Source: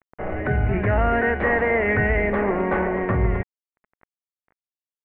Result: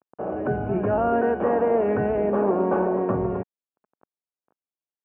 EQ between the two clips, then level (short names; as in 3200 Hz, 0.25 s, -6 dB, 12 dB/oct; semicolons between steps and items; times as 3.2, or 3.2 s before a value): running mean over 22 samples; HPF 200 Hz 12 dB/oct; +2.5 dB